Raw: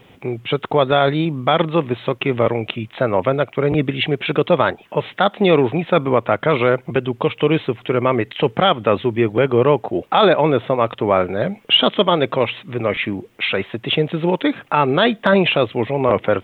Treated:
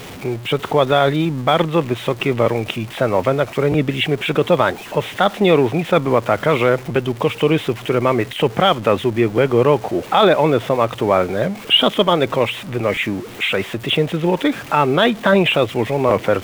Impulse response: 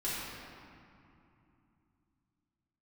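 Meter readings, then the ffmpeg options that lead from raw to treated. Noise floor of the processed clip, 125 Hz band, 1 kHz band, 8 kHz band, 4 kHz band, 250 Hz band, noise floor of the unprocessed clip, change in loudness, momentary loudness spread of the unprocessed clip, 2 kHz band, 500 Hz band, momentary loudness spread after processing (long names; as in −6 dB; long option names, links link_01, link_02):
−34 dBFS, +1.0 dB, +0.5 dB, can't be measured, +1.0 dB, +0.5 dB, −49 dBFS, +0.5 dB, 8 LU, +1.0 dB, +0.5 dB, 7 LU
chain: -af "aeval=exprs='val(0)+0.5*0.0335*sgn(val(0))':channel_layout=same"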